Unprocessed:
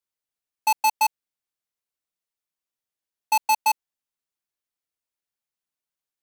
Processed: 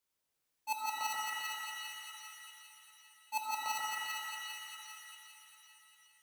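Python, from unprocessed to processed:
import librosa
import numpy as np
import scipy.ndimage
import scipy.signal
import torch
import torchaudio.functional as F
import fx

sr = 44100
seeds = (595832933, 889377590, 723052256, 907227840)

y = fx.auto_swell(x, sr, attack_ms=370.0)
y = fx.echo_split(y, sr, split_hz=1300.0, low_ms=132, high_ms=400, feedback_pct=52, wet_db=-3.0)
y = fx.rev_shimmer(y, sr, seeds[0], rt60_s=2.8, semitones=7, shimmer_db=-2, drr_db=2.0)
y = y * librosa.db_to_amplitude(3.0)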